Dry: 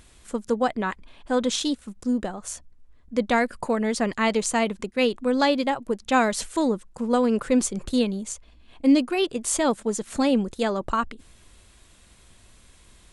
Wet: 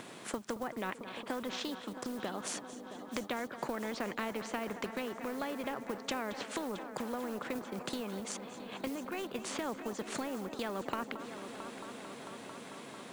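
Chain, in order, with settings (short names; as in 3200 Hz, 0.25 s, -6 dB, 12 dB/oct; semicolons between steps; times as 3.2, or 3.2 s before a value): Bessel high-pass 300 Hz, order 8; treble ducked by the level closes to 1600 Hz, closed at -19.5 dBFS; tilt -4 dB/oct; in parallel at -2 dB: level quantiser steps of 14 dB; on the sum: vibrato 2.2 Hz 5.4 cents; compressor 4:1, threshold -29 dBFS, peak gain reduction 18.5 dB; companded quantiser 8-bit; on a send: multi-head echo 0.223 s, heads first and third, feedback 71%, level -20 dB; on the sum: spectral compressor 2:1; gain -3 dB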